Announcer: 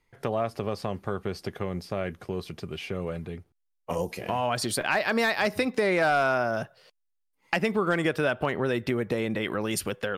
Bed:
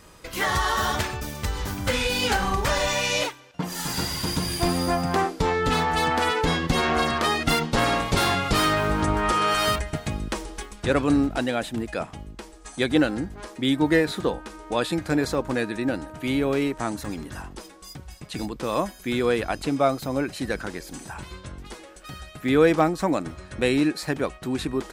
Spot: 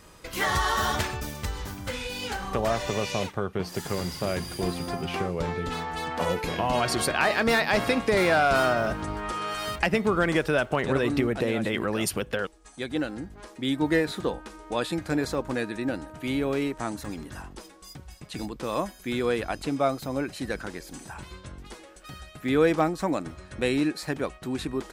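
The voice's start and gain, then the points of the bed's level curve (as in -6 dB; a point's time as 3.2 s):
2.30 s, +1.5 dB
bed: 1.25 s -1.5 dB
1.99 s -9.5 dB
12.85 s -9.5 dB
13.9 s -3.5 dB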